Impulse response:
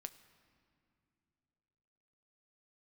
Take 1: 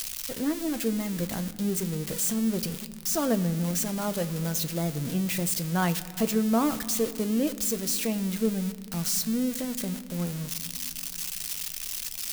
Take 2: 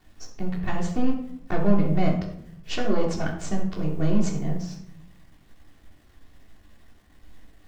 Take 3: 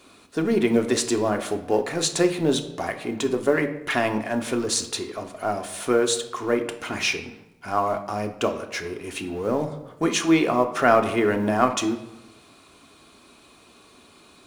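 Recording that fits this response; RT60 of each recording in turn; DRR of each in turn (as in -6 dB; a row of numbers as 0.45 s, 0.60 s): 1; no single decay rate, 0.70 s, 0.95 s; 9.0 dB, -10.0 dB, 5.0 dB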